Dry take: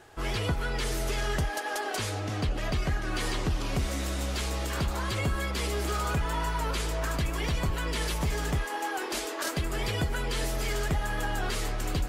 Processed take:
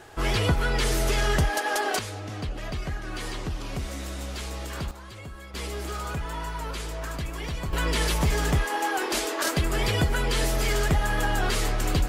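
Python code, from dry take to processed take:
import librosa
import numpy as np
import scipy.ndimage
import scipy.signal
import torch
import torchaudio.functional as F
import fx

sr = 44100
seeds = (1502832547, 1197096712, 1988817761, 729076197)

y = fx.gain(x, sr, db=fx.steps((0.0, 6.0), (1.99, -3.0), (4.91, -12.0), (5.54, -3.0), (7.73, 5.5)))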